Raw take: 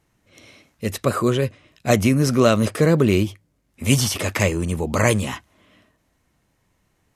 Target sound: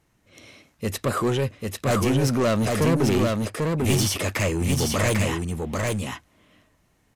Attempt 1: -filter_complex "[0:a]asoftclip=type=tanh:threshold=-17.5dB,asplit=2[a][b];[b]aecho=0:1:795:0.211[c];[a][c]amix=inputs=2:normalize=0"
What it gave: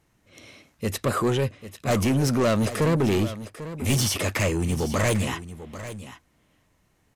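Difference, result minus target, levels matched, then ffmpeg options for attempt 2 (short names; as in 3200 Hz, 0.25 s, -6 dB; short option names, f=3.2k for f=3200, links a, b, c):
echo-to-direct -10.5 dB
-filter_complex "[0:a]asoftclip=type=tanh:threshold=-17.5dB,asplit=2[a][b];[b]aecho=0:1:795:0.708[c];[a][c]amix=inputs=2:normalize=0"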